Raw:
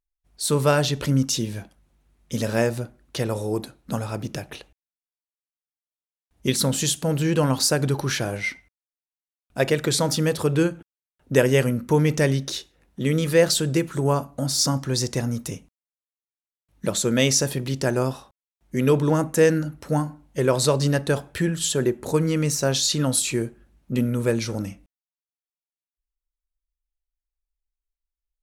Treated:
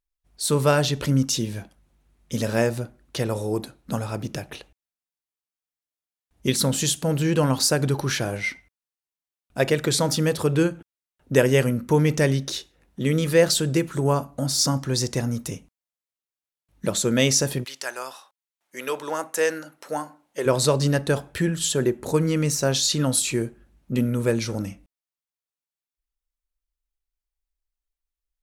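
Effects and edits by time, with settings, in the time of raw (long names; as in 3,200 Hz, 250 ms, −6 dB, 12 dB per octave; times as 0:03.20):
0:17.63–0:20.45: high-pass filter 1,200 Hz → 410 Hz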